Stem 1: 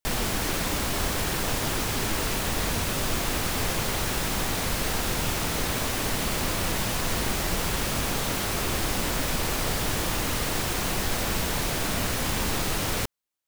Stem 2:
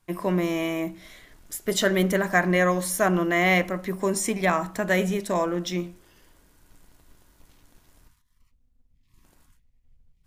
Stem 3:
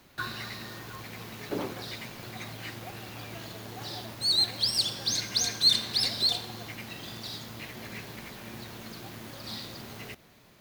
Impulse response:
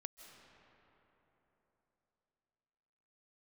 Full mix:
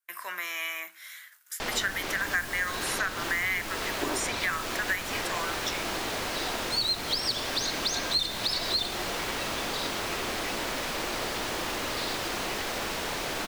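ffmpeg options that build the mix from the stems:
-filter_complex "[0:a]adelay=1550,volume=-1.5dB[link_01];[1:a]aemphasis=mode=production:type=50fm,agate=range=-20dB:threshold=-48dB:ratio=16:detection=peak,highpass=frequency=1500:width_type=q:width=3.1,volume=-3dB[link_02];[2:a]aecho=1:1:3.1:0.76,adelay=2500,volume=2dB[link_03];[link_01][link_02][link_03]amix=inputs=3:normalize=0,acrossover=split=270|6100[link_04][link_05][link_06];[link_04]acompressor=threshold=-45dB:ratio=4[link_07];[link_05]acompressor=threshold=-27dB:ratio=4[link_08];[link_06]acompressor=threshold=-44dB:ratio=4[link_09];[link_07][link_08][link_09]amix=inputs=3:normalize=0"

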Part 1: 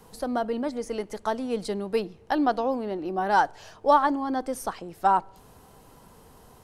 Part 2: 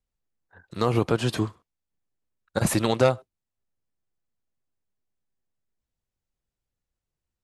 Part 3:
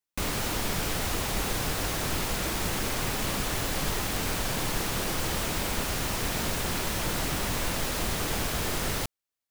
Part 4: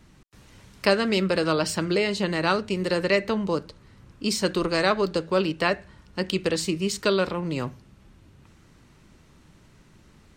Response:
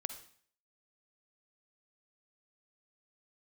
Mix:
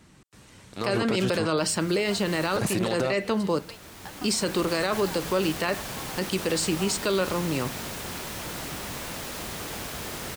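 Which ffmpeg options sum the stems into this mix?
-filter_complex "[0:a]highpass=1100,acompressor=threshold=-36dB:ratio=6,adelay=1750,volume=-4.5dB[link_01];[1:a]aeval=exprs='sgn(val(0))*max(abs(val(0))-0.02,0)':channel_layout=same,volume=2.5dB,asplit=2[link_02][link_03];[2:a]adelay=1400,volume=-4.5dB[link_04];[3:a]equalizer=frequency=8300:width_type=o:width=0.38:gain=5.5,volume=1.5dB[link_05];[link_03]apad=whole_len=480792[link_06];[link_04][link_06]sidechaincompress=threshold=-34dB:ratio=8:attack=32:release=1150[link_07];[link_01][link_02][link_07][link_05]amix=inputs=4:normalize=0,highpass=frequency=99:poles=1,alimiter=limit=-16dB:level=0:latency=1:release=28"

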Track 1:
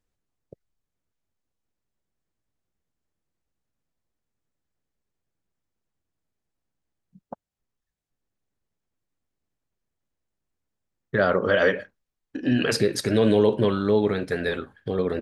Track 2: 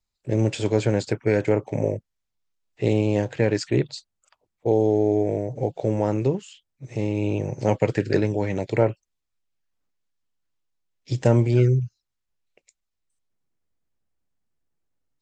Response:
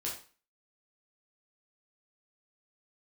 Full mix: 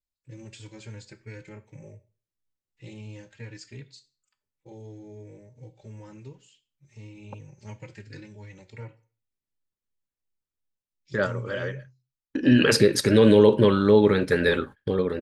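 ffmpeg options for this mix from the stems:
-filter_complex "[0:a]agate=range=-18dB:threshold=-43dB:ratio=16:detection=peak,dynaudnorm=framelen=110:gausssize=9:maxgain=10dB,volume=-3dB[link_01];[1:a]equalizer=frequency=450:width=0.53:gain=-14,asplit=2[link_02][link_03];[link_03]adelay=3.5,afreqshift=2.8[link_04];[link_02][link_04]amix=inputs=2:normalize=1,volume=-11.5dB,asplit=3[link_05][link_06][link_07];[link_06]volume=-10dB[link_08];[link_07]apad=whole_len=670877[link_09];[link_01][link_09]sidechaincompress=threshold=-54dB:ratio=4:attack=31:release=405[link_10];[2:a]atrim=start_sample=2205[link_11];[link_08][link_11]afir=irnorm=-1:irlink=0[link_12];[link_10][link_05][link_12]amix=inputs=3:normalize=0,asuperstop=centerf=700:order=4:qfactor=5.1"

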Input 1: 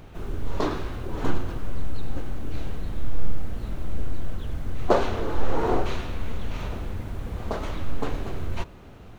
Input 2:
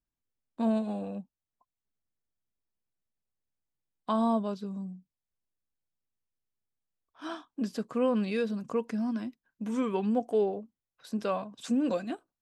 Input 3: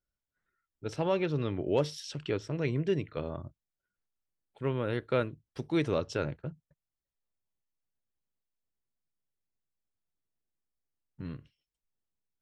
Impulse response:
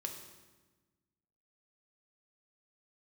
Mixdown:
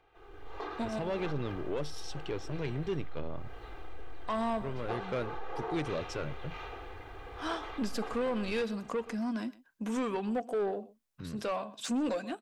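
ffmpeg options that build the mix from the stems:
-filter_complex "[0:a]acrossover=split=450 3800:gain=0.141 1 0.158[link_01][link_02][link_03];[link_01][link_02][link_03]amix=inputs=3:normalize=0,acompressor=threshold=-35dB:ratio=2.5,aecho=1:1:2.5:0.75,volume=-15dB[link_04];[1:a]lowshelf=frequency=270:gain=-11,adelay=200,volume=-4.5dB,asplit=2[link_05][link_06];[link_06]volume=-23dB[link_07];[2:a]highshelf=frequency=7900:gain=6,volume=-13.5dB,asplit=2[link_08][link_09];[link_09]apad=whole_len=556319[link_10];[link_05][link_10]sidechaincompress=threshold=-57dB:ratio=8:attack=16:release=124[link_11];[link_11][link_08]amix=inputs=2:normalize=0,alimiter=level_in=7dB:limit=-24dB:level=0:latency=1:release=467,volume=-7dB,volume=0dB[link_12];[link_07]aecho=0:1:125:1[link_13];[link_04][link_12][link_13]amix=inputs=3:normalize=0,dynaudnorm=framelen=100:gausssize=9:maxgain=11dB,asoftclip=type=tanh:threshold=-26.5dB"

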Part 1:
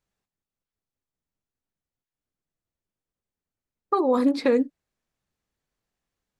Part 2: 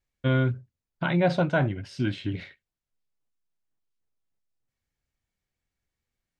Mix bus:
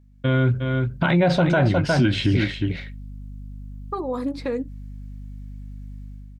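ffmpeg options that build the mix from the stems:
ffmpeg -i stem1.wav -i stem2.wav -filter_complex "[0:a]volume=-6dB,asplit=2[link_01][link_02];[1:a]deesser=0.95,aeval=exprs='val(0)+0.002*(sin(2*PI*50*n/s)+sin(2*PI*2*50*n/s)/2+sin(2*PI*3*50*n/s)/3+sin(2*PI*4*50*n/s)/4+sin(2*PI*5*50*n/s)/5)':channel_layout=same,dynaudnorm=framelen=110:gausssize=7:maxgain=14dB,volume=3dB,asplit=2[link_03][link_04];[link_04]volume=-9.5dB[link_05];[link_02]apad=whole_len=281975[link_06];[link_03][link_06]sidechaincompress=threshold=-29dB:ratio=8:attack=16:release=196[link_07];[link_05]aecho=0:1:359:1[link_08];[link_01][link_07][link_08]amix=inputs=3:normalize=0,alimiter=limit=-10dB:level=0:latency=1:release=103" out.wav

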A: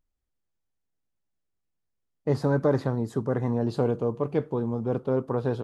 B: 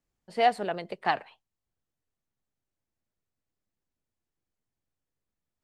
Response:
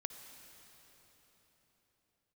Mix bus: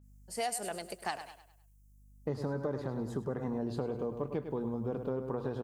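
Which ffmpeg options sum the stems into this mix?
-filter_complex "[0:a]bandreject=frequency=60:width_type=h:width=6,bandreject=frequency=120:width_type=h:width=6,aeval=exprs='val(0)+0.00224*(sin(2*PI*50*n/s)+sin(2*PI*2*50*n/s)/2+sin(2*PI*3*50*n/s)/3+sin(2*PI*4*50*n/s)/4+sin(2*PI*5*50*n/s)/5)':channel_layout=same,volume=-4.5dB,asplit=2[link_01][link_02];[link_02]volume=-10dB[link_03];[1:a]aexciter=amount=12.7:drive=2.5:freq=5500,adynamicequalizer=threshold=0.00794:dfrequency=3100:dqfactor=0.7:tfrequency=3100:tqfactor=0.7:attack=5:release=100:ratio=0.375:range=3.5:mode=boostabove:tftype=highshelf,volume=-6.5dB,asplit=3[link_04][link_05][link_06];[link_05]volume=-13.5dB[link_07];[link_06]apad=whole_len=248417[link_08];[link_01][link_08]sidechaincompress=threshold=-45dB:ratio=8:attack=16:release=845[link_09];[link_03][link_07]amix=inputs=2:normalize=0,aecho=0:1:102|204|306|408|510:1|0.38|0.144|0.0549|0.0209[link_10];[link_09][link_04][link_10]amix=inputs=3:normalize=0,acompressor=threshold=-31dB:ratio=6"

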